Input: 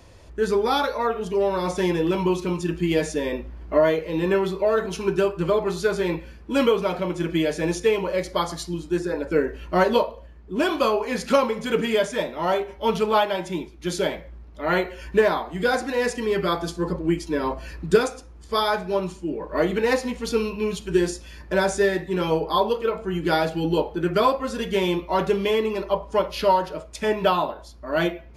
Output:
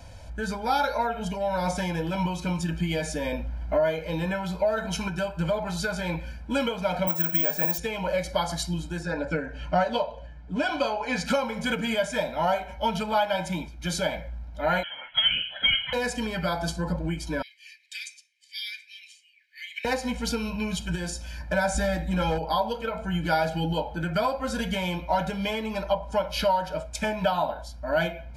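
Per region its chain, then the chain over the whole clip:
0:07.07–0:07.78: high-pass filter 120 Hz + parametric band 1,100 Hz +9 dB 0.73 octaves + bad sample-rate conversion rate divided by 2×, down none, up zero stuff
0:09.03–0:11.26: low-pass filter 6,900 Hz + comb filter 6.9 ms, depth 42%
0:14.83–0:15.93: high-pass filter 480 Hz 24 dB per octave + voice inversion scrambler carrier 3,700 Hz
0:17.42–0:19.85: Butterworth high-pass 1,900 Hz 96 dB per octave + high-shelf EQ 4,300 Hz −12 dB
0:21.74–0:22.39: low-shelf EQ 150 Hz +10.5 dB + comb filter 3.7 ms, depth 58% + hard clipping −15 dBFS
whole clip: downward compressor 4 to 1, threshold −24 dBFS; comb filter 1.3 ms, depth 94%

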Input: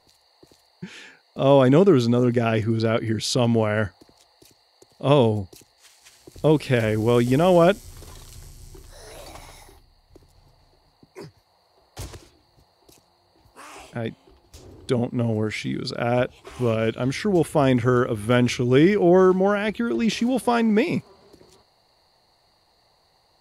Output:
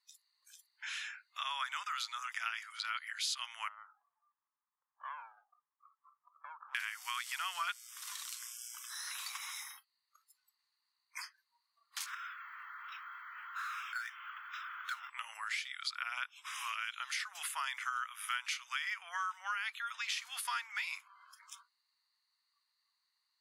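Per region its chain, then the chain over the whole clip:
0:03.68–0:06.75: downward compressor, threshold −28 dBFS + Butterworth low-pass 1,300 Hz 96 dB per octave + windowed peak hold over 5 samples
0:12.06–0:15.10: four-pole ladder band-pass 1,500 Hz, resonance 75% + high-frequency loss of the air 140 metres + power curve on the samples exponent 0.5
whole clip: noise reduction from a noise print of the clip's start 25 dB; Butterworth high-pass 1,100 Hz 48 dB per octave; downward compressor 3 to 1, threshold −49 dBFS; level +8 dB

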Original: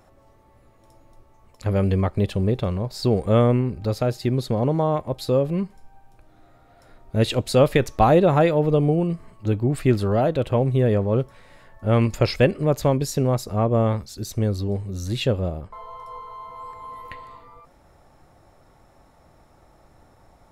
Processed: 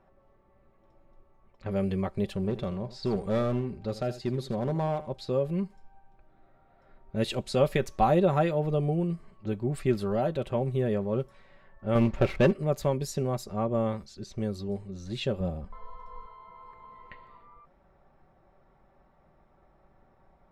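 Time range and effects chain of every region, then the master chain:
0:02.34–0:05.14: high-shelf EQ 9,800 Hz −5 dB + gain into a clipping stage and back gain 14 dB + single-tap delay 82 ms −15 dB
0:11.95–0:12.53: running median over 9 samples + high-frequency loss of the air 180 metres + leveller curve on the samples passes 2
0:15.40–0:16.26: low-shelf EQ 160 Hz +9.5 dB + comb filter 4 ms, depth 45%
whole clip: comb filter 5.2 ms, depth 49%; low-pass that shuts in the quiet parts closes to 2,300 Hz, open at −18 dBFS; level −8.5 dB

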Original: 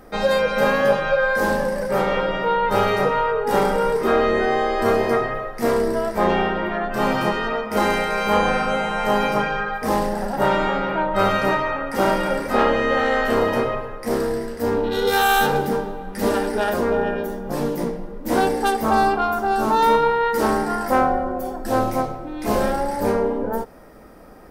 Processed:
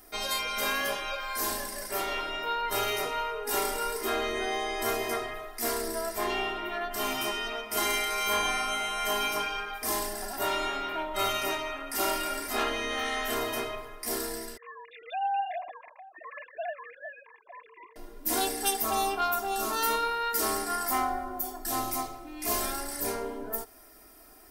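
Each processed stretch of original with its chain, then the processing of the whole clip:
0:14.57–0:17.96: three sine waves on the formant tracks + phaser with its sweep stopped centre 2,100 Hz, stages 8
whole clip: first-order pre-emphasis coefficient 0.9; comb filter 2.9 ms, depth 96%; level +2.5 dB

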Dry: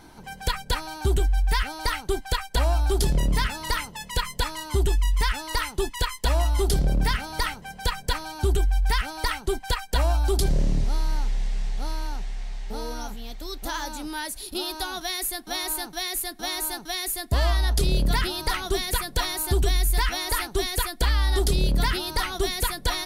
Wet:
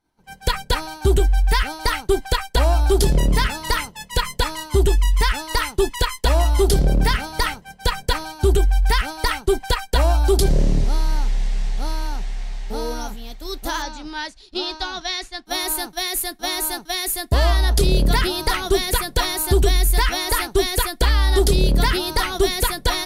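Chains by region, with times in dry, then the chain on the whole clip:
0:13.82–0:15.46: low-pass filter 6,100 Hz 24 dB per octave + parametric band 410 Hz −3.5 dB 2 octaves
whole clip: dynamic equaliser 420 Hz, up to +4 dB, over −39 dBFS, Q 1.4; downward expander −31 dBFS; level +5 dB

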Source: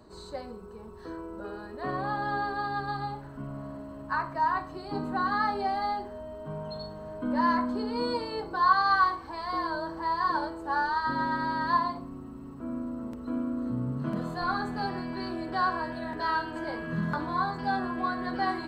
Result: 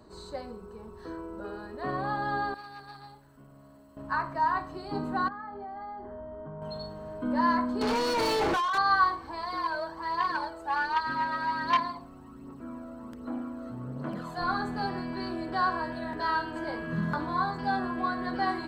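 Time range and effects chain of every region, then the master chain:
0:02.54–0:03.97: first-order pre-emphasis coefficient 0.8 + saturating transformer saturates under 610 Hz
0:05.28–0:06.62: Savitzky-Golay smoothing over 41 samples + downward compressor 10 to 1, threshold −37 dBFS
0:07.81–0:08.78: compressor whose output falls as the input rises −36 dBFS + mid-hump overdrive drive 32 dB, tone 2,700 Hz, clips at −20 dBFS
0:09.43–0:14.38: low-shelf EQ 300 Hz −10 dB + phase shifter 1.3 Hz, delay 1.6 ms, feedback 45% + saturating transformer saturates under 1,500 Hz
whole clip: no processing

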